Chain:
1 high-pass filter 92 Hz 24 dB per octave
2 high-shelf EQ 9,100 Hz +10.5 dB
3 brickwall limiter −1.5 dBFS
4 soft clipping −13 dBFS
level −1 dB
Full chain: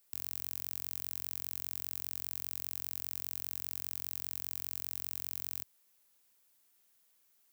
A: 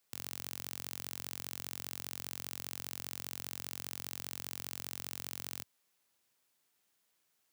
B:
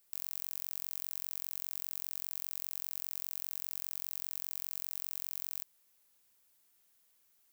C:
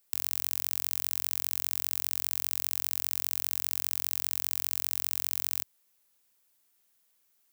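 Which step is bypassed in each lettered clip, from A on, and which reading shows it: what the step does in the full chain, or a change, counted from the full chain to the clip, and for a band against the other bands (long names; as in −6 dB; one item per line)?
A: 2, 8 kHz band −3.5 dB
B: 1, 500 Hz band −5.5 dB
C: 4, distortion level −10 dB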